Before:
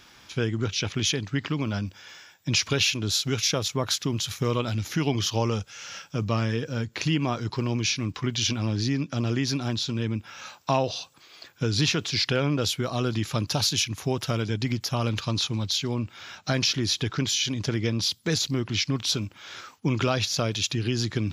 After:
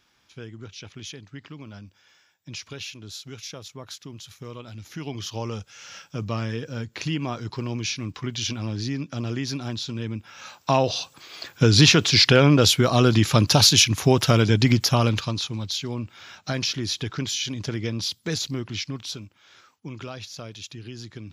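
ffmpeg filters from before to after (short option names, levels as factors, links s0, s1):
-af "volume=2.82,afade=t=in:st=4.66:d=1.34:silence=0.298538,afade=t=in:st=10.33:d=1.16:silence=0.266073,afade=t=out:st=14.81:d=0.56:silence=0.281838,afade=t=out:st=18.47:d=0.89:silence=0.316228"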